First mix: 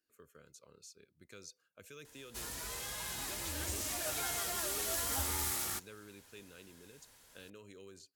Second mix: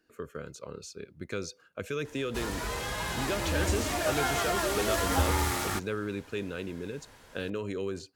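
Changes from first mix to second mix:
speech +6.5 dB; master: remove pre-emphasis filter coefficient 0.8

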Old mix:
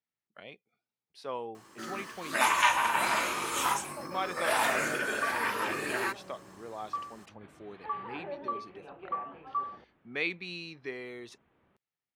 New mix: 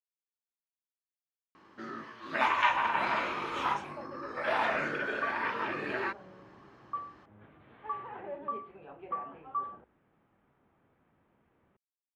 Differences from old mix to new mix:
speech: muted; master: add distance through air 270 m

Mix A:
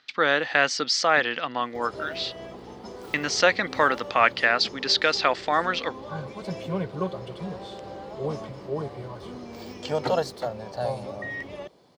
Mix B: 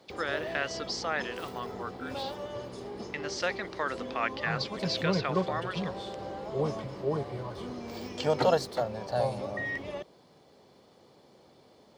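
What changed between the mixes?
speech -11.5 dB; background: entry -1.65 s

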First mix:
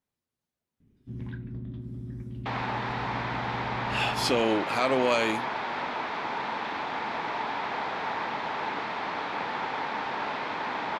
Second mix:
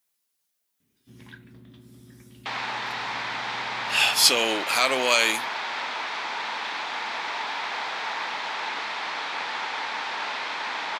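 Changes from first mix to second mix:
speech +3.0 dB; master: add tilt EQ +4.5 dB/octave

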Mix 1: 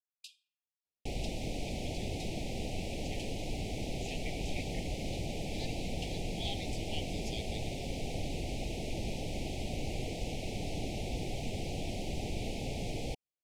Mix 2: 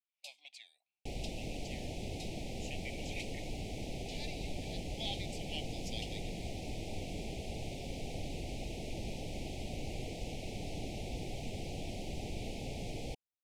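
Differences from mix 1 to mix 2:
speech: entry -1.40 s; second sound -4.0 dB

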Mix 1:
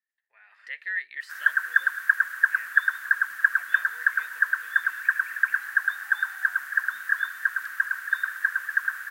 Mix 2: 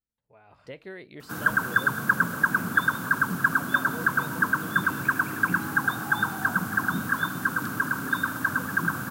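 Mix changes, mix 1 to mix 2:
background +9.0 dB; master: remove resonant high-pass 1.8 kHz, resonance Q 15

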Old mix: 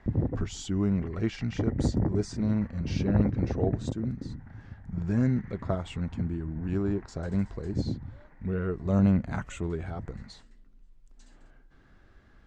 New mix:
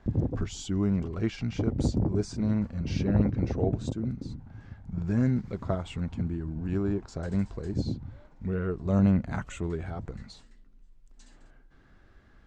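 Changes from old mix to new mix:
first sound: remove resonant low-pass 1.9 kHz, resonance Q 6; second sound +3.5 dB

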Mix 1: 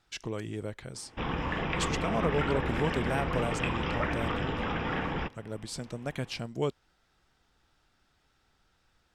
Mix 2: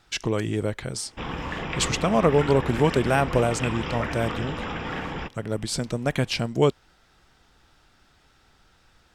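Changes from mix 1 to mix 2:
speech +10.5 dB; background: remove distance through air 120 m

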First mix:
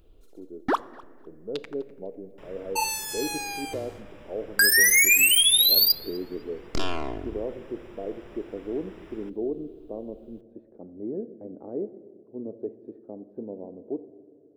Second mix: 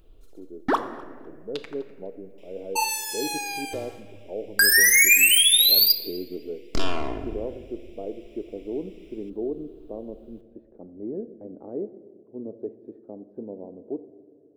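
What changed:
first sound: send +11.5 dB; second sound: add steep high-pass 2.2 kHz 72 dB/octave

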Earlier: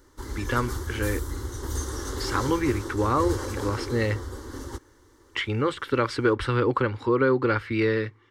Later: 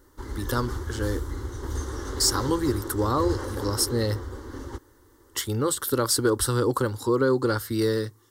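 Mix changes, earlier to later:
speech: remove resonant low-pass 2.4 kHz, resonance Q 11; background: add treble shelf 4.6 kHz -9.5 dB

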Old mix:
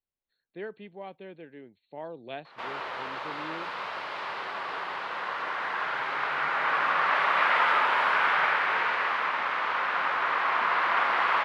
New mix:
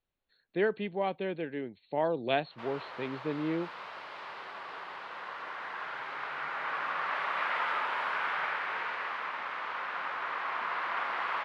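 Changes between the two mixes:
speech +10.0 dB; background -8.5 dB

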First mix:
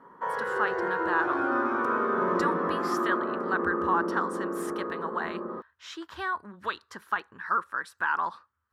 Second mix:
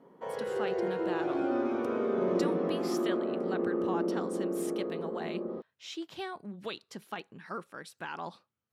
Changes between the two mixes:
speech: add resonant low shelf 100 Hz -12 dB, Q 3; master: add high-order bell 1.3 kHz -15 dB 1.2 oct

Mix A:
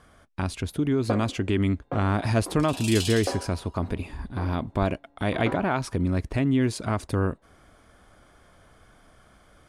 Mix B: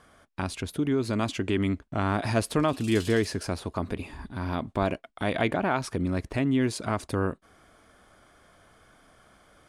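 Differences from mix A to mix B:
first sound: muted; second sound -10.5 dB; master: add bass shelf 130 Hz -8.5 dB

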